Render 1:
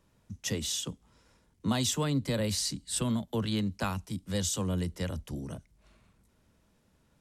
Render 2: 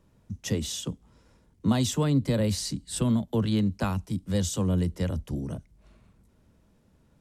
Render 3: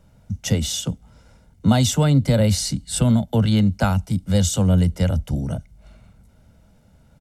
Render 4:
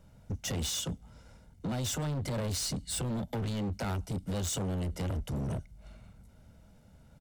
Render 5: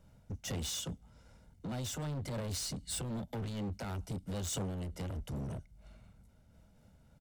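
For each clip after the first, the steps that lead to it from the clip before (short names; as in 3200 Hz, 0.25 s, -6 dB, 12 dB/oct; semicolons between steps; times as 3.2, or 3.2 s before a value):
tilt shelf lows +4 dB, about 780 Hz; gain +2.5 dB
comb 1.4 ms, depth 54%; gain +7 dB
limiter -16.5 dBFS, peak gain reduction 11 dB; hard clip -27 dBFS, distortion -8 dB; gain -4 dB
noise-modulated level, depth 50%; gain -2.5 dB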